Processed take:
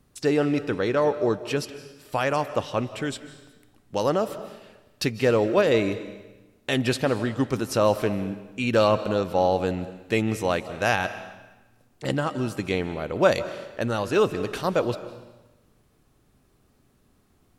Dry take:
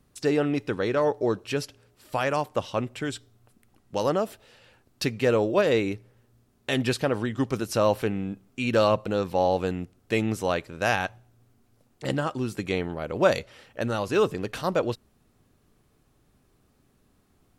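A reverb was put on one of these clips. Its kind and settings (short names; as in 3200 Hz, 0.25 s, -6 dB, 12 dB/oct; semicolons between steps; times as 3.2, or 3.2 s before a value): digital reverb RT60 1.1 s, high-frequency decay 0.95×, pre-delay 0.115 s, DRR 13 dB; gain +1.5 dB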